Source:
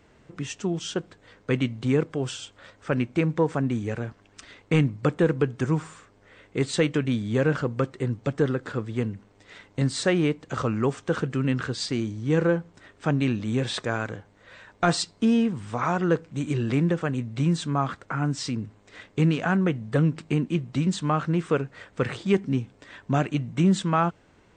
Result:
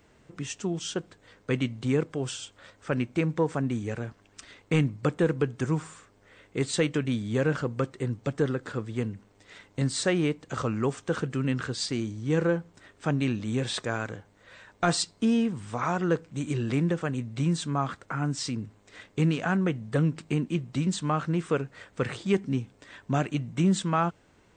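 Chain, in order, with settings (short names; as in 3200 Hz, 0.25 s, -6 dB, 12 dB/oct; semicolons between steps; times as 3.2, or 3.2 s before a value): high shelf 8000 Hz +9.5 dB; gain -3 dB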